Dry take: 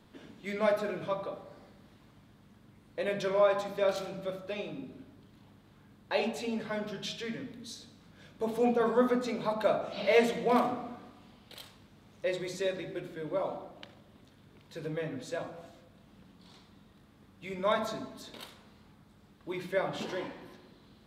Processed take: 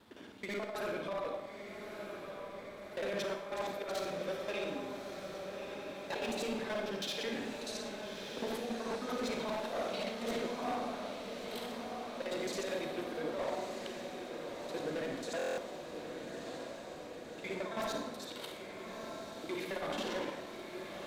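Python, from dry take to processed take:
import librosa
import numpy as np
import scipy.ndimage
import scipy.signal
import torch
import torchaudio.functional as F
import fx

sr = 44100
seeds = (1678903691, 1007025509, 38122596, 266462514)

p1 = fx.local_reverse(x, sr, ms=54.0)
p2 = scipy.signal.sosfilt(scipy.signal.butter(2, 79.0, 'highpass', fs=sr, output='sos'), p1)
p3 = fx.peak_eq(p2, sr, hz=140.0, db=-10.0, octaves=0.97)
p4 = fx.over_compress(p3, sr, threshold_db=-33.0, ratio=-0.5)
p5 = np.clip(10.0 ** (32.0 / 20.0) * p4, -1.0, 1.0) / 10.0 ** (32.0 / 20.0)
p6 = p5 + fx.echo_diffused(p5, sr, ms=1238, feedback_pct=72, wet_db=-6.5, dry=0)
p7 = fx.rev_schroeder(p6, sr, rt60_s=0.75, comb_ms=31, drr_db=6.0)
p8 = fx.buffer_glitch(p7, sr, at_s=(15.37,), block=1024, repeats=8)
y = p8 * librosa.db_to_amplitude(-2.0)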